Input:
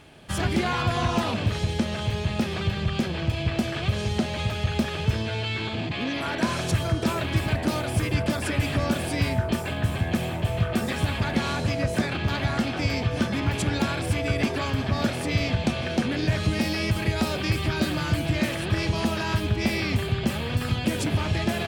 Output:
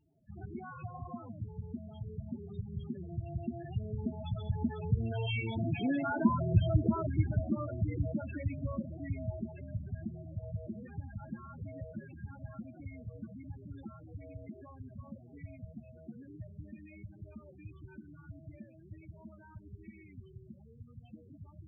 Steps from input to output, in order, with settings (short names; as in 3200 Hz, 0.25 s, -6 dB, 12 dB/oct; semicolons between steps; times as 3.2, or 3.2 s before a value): Doppler pass-by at 6.17, 11 m/s, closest 8.6 m; loudest bins only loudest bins 8